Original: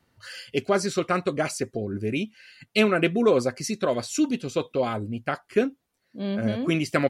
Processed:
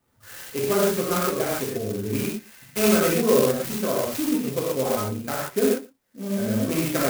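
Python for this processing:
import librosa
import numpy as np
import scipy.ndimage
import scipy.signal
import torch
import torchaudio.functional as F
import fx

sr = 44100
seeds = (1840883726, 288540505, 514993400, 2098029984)

p1 = x + fx.echo_single(x, sr, ms=114, db=-22.0, dry=0)
p2 = fx.rev_gated(p1, sr, seeds[0], gate_ms=170, shape='flat', drr_db=-6.5)
p3 = fx.clock_jitter(p2, sr, seeds[1], jitter_ms=0.082)
y = F.gain(torch.from_numpy(p3), -5.5).numpy()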